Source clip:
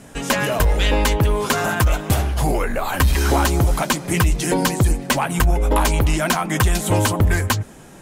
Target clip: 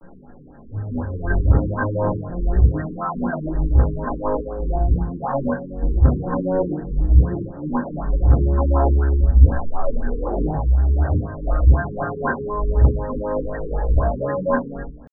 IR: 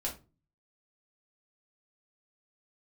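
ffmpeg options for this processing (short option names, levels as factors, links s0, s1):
-filter_complex "[0:a]areverse,atempo=0.53[s0];[1:a]atrim=start_sample=2205[s1];[s0][s1]afir=irnorm=-1:irlink=0,afftfilt=real='re*lt(b*sr/1024,460*pow(1900/460,0.5+0.5*sin(2*PI*4*pts/sr)))':imag='im*lt(b*sr/1024,460*pow(1900/460,0.5+0.5*sin(2*PI*4*pts/sr)))':win_size=1024:overlap=0.75,volume=0.562"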